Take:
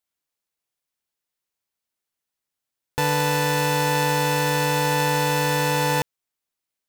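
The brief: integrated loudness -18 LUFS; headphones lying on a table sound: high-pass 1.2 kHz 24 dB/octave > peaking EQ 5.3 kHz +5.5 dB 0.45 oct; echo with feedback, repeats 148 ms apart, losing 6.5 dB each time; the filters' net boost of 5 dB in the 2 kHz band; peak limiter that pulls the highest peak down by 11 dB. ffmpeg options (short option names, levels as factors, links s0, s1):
-af "equalizer=f=2000:t=o:g=6.5,alimiter=limit=0.119:level=0:latency=1,highpass=f=1200:w=0.5412,highpass=f=1200:w=1.3066,equalizer=f=5300:t=o:w=0.45:g=5.5,aecho=1:1:148|296|444|592|740|888:0.473|0.222|0.105|0.0491|0.0231|0.0109,volume=3.35"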